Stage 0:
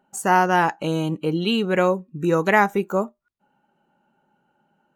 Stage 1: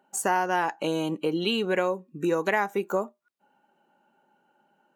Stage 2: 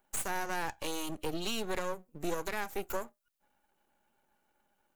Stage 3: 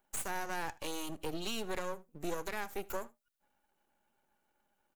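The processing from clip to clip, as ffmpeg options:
-af "highpass=270,bandreject=f=1300:w=17,acompressor=threshold=0.0631:ratio=3,volume=1.12"
-filter_complex "[0:a]acrossover=split=140|990|2900[s0][s1][s2][s3];[s3]crystalizer=i=3.5:c=0[s4];[s0][s1][s2][s4]amix=inputs=4:normalize=0,aeval=exprs='max(val(0),0)':c=same,alimiter=limit=0.158:level=0:latency=1:release=120,volume=0.562"
-af "aecho=1:1:78:0.075,volume=0.708"

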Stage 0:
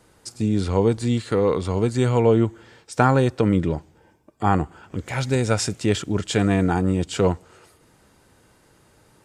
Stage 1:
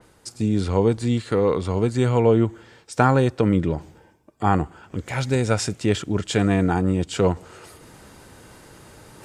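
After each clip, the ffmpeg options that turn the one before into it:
-af "areverse,acompressor=mode=upward:threshold=0.0178:ratio=2.5,areverse,adynamicequalizer=threshold=0.0112:dfrequency=3700:dqfactor=0.7:tfrequency=3700:tqfactor=0.7:attack=5:release=100:ratio=0.375:range=1.5:mode=cutabove:tftype=highshelf"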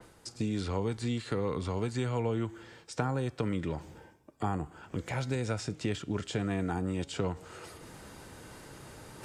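-filter_complex "[0:a]acrossover=split=240|910|7400[s0][s1][s2][s3];[s0]acompressor=threshold=0.0282:ratio=4[s4];[s1]acompressor=threshold=0.0224:ratio=4[s5];[s2]acompressor=threshold=0.0126:ratio=4[s6];[s3]acompressor=threshold=0.00158:ratio=4[s7];[s4][s5][s6][s7]amix=inputs=4:normalize=0,flanger=delay=5.9:depth=1.8:regen=90:speed=0.38:shape=sinusoidal,areverse,acompressor=mode=upward:threshold=0.00447:ratio=2.5,areverse,volume=1.19"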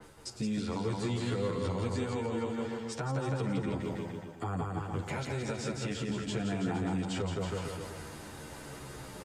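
-filter_complex "[0:a]asplit=2[s0][s1];[s1]aecho=0:1:170|323|460.7|584.6|696.2:0.631|0.398|0.251|0.158|0.1[s2];[s0][s2]amix=inputs=2:normalize=0,alimiter=level_in=1.12:limit=0.0631:level=0:latency=1:release=221,volume=0.891,asplit=2[s3][s4];[s4]adelay=10.6,afreqshift=-0.36[s5];[s3][s5]amix=inputs=2:normalize=1,volume=1.68"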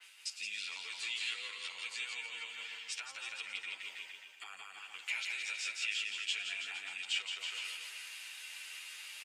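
-af "highpass=f=2600:t=q:w=4.5"

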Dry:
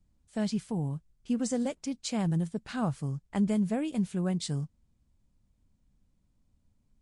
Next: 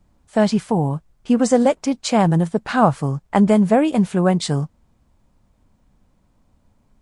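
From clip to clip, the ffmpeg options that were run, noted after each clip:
-af "equalizer=f=850:t=o:w=2.6:g=12,volume=2.82"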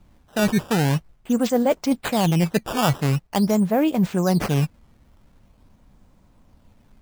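-af "areverse,acompressor=threshold=0.0794:ratio=6,areverse,acrusher=samples=12:mix=1:aa=0.000001:lfo=1:lforange=19.2:lforate=0.45,volume=1.78"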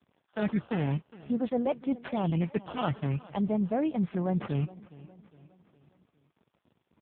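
-filter_complex "[0:a]acrossover=split=910[s0][s1];[s0]aeval=exprs='val(0)*gte(abs(val(0)),0.00376)':c=same[s2];[s2][s1]amix=inputs=2:normalize=0,aecho=1:1:412|824|1236|1648:0.1|0.05|0.025|0.0125,volume=0.376" -ar 8000 -c:a libopencore_amrnb -b:a 5150

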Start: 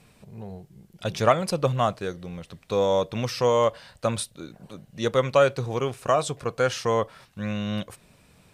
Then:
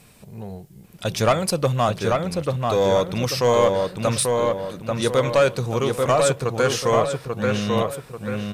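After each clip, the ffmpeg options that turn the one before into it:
-filter_complex "[0:a]highshelf=f=7900:g=10.5,asoftclip=type=tanh:threshold=0.2,asplit=2[s0][s1];[s1]adelay=839,lowpass=f=2800:p=1,volume=0.708,asplit=2[s2][s3];[s3]adelay=839,lowpass=f=2800:p=1,volume=0.44,asplit=2[s4][s5];[s5]adelay=839,lowpass=f=2800:p=1,volume=0.44,asplit=2[s6][s7];[s7]adelay=839,lowpass=f=2800:p=1,volume=0.44,asplit=2[s8][s9];[s9]adelay=839,lowpass=f=2800:p=1,volume=0.44,asplit=2[s10][s11];[s11]adelay=839,lowpass=f=2800:p=1,volume=0.44[s12];[s0][s2][s4][s6][s8][s10][s12]amix=inputs=7:normalize=0,volume=1.58"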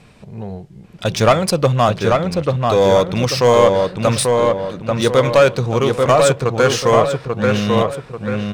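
-af "adynamicsmooth=sensitivity=5:basefreq=4700,volume=2"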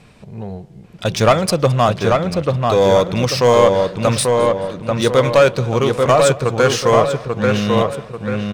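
-af "aecho=1:1:215|430|645:0.0794|0.0294|0.0109"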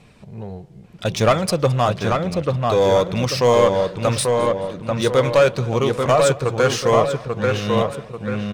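-af "flanger=delay=0.3:depth=2.1:regen=-74:speed=0.86:shape=sinusoidal,volume=1.12"

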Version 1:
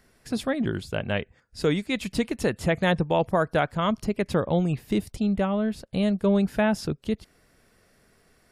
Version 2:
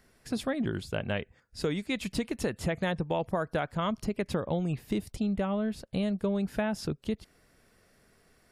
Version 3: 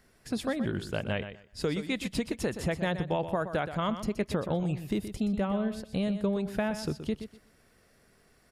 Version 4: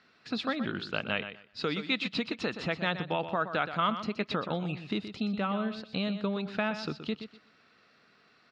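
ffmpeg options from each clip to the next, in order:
-af "acompressor=threshold=0.0708:ratio=6,volume=0.75"
-af "aecho=1:1:123|246|369:0.299|0.0597|0.0119"
-af "highpass=190,equalizer=f=380:t=q:w=4:g=-4,equalizer=f=560:t=q:w=4:g=-4,equalizer=f=1300:t=q:w=4:g=9,equalizer=f=2600:t=q:w=4:g=7,equalizer=f=4000:t=q:w=4:g=9,lowpass=f=5000:w=0.5412,lowpass=f=5000:w=1.3066"

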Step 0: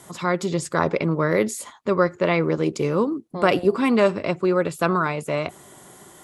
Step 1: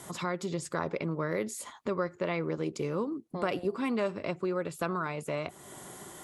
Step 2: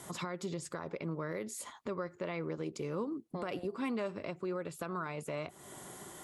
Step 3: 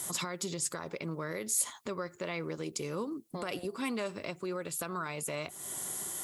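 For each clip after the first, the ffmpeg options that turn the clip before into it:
-af "acompressor=threshold=0.0126:ratio=2"
-af "alimiter=level_in=1.19:limit=0.0631:level=0:latency=1:release=186,volume=0.841,volume=0.75"
-af "crystalizer=i=4:c=0"

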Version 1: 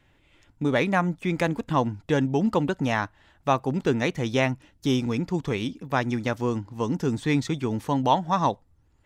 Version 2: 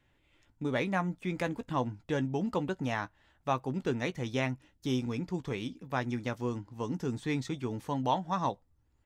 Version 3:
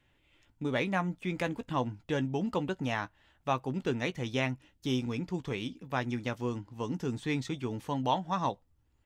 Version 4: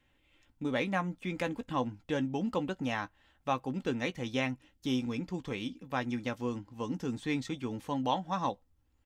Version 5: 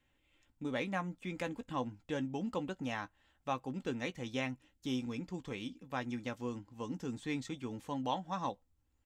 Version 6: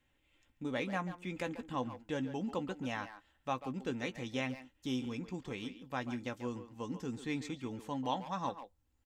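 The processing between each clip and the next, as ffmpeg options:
-filter_complex "[0:a]asplit=2[s0][s1];[s1]adelay=16,volume=0.266[s2];[s0][s2]amix=inputs=2:normalize=0,volume=0.376"
-af "equalizer=f=2900:t=o:w=0.63:g=4"
-af "aecho=1:1:3.8:0.32,volume=0.841"
-af "equalizer=f=7400:w=3.5:g=5,volume=0.562"
-filter_complex "[0:a]asplit=2[s0][s1];[s1]adelay=140,highpass=300,lowpass=3400,asoftclip=type=hard:threshold=0.0266,volume=0.316[s2];[s0][s2]amix=inputs=2:normalize=0"

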